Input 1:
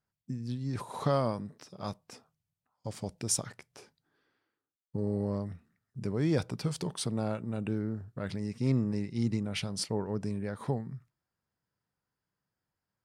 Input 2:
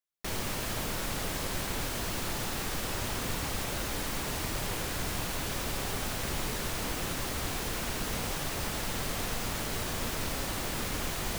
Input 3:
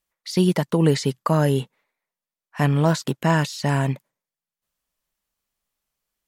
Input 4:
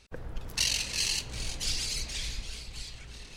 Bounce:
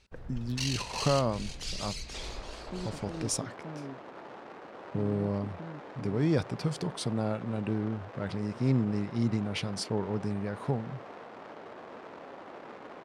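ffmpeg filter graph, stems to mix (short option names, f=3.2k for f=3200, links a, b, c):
-filter_complex "[0:a]volume=1.5dB[a];[1:a]adynamicsmooth=sensitivity=2.5:basefreq=530,highpass=400,adelay=1900,volume=-3dB[b];[2:a]bandpass=f=260:t=q:w=2:csg=0,adelay=2350,volume=-16.5dB[c];[3:a]asoftclip=type=hard:threshold=-19dB,volume=-4.5dB[d];[a][b][c][d]amix=inputs=4:normalize=0,highshelf=f=9.1k:g=-11.5"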